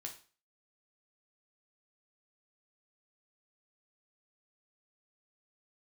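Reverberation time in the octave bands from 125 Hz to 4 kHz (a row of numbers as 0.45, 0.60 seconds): 0.40, 0.40, 0.40, 0.40, 0.40, 0.35 seconds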